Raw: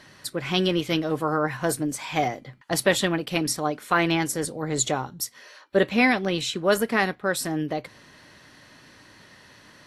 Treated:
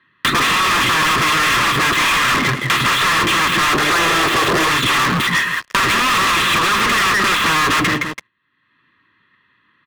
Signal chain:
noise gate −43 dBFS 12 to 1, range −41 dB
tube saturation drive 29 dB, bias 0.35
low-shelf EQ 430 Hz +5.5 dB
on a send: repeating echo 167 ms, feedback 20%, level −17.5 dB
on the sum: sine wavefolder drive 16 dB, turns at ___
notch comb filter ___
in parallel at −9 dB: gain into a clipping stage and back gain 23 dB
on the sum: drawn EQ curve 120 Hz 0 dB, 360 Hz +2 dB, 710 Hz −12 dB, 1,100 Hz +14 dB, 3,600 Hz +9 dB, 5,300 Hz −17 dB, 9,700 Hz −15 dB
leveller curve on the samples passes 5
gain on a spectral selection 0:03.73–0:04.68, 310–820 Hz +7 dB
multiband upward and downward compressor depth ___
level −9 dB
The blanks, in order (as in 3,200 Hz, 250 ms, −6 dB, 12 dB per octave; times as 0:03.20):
−21.5 dBFS, 750 Hz, 70%